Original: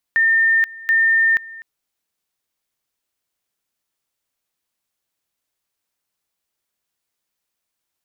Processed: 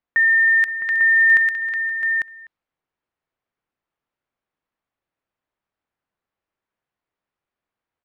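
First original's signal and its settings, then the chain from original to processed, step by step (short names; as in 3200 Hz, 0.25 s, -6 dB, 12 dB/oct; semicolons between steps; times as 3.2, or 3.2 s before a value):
two-level tone 1810 Hz -12 dBFS, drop 21 dB, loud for 0.48 s, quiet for 0.25 s, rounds 2
low-pass opened by the level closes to 1800 Hz, open at -16.5 dBFS; tapped delay 0.317/0.523/0.661/0.848 s -14.5/-17/-9.5/-4.5 dB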